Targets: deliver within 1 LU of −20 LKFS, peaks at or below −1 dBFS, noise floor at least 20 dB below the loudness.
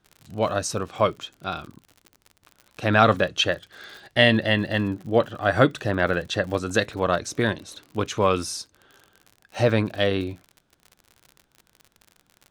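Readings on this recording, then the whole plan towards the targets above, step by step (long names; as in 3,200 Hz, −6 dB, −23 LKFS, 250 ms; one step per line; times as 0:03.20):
crackle rate 53 per second; integrated loudness −23.5 LKFS; sample peak −1.5 dBFS; target loudness −20.0 LKFS
→ click removal
level +3.5 dB
brickwall limiter −1 dBFS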